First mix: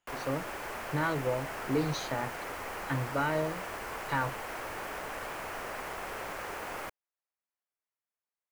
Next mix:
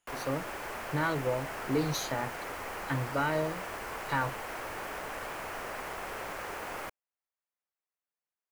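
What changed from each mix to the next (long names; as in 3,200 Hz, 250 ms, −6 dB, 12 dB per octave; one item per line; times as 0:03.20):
speech: remove high-frequency loss of the air 83 metres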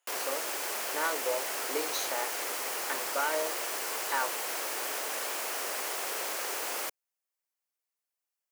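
background: remove three-way crossover with the lows and the highs turned down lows −17 dB, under 420 Hz, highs −15 dB, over 2,400 Hz
master: add high-pass filter 420 Hz 24 dB per octave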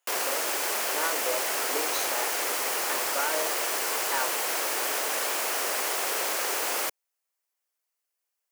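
background +6.0 dB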